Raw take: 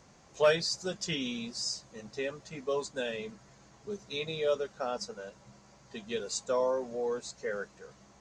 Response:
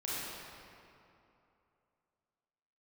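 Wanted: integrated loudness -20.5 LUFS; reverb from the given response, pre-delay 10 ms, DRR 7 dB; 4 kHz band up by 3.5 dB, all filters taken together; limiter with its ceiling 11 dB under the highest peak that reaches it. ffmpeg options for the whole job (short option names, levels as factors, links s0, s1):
-filter_complex "[0:a]equalizer=f=4000:t=o:g=4.5,alimiter=level_in=1.26:limit=0.0631:level=0:latency=1,volume=0.794,asplit=2[s0][s1];[1:a]atrim=start_sample=2205,adelay=10[s2];[s1][s2]afir=irnorm=-1:irlink=0,volume=0.266[s3];[s0][s3]amix=inputs=2:normalize=0,volume=5.96"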